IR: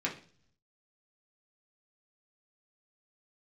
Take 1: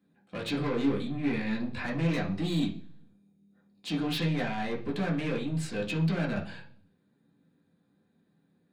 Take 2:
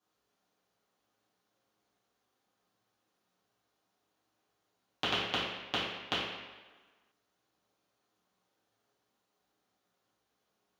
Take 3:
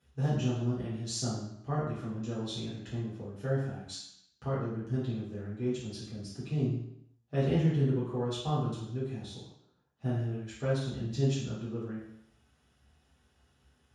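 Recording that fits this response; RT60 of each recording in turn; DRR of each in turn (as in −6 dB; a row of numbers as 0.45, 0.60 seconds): 1; 0.45, 1.4, 0.75 seconds; −3.0, −11.0, −11.5 decibels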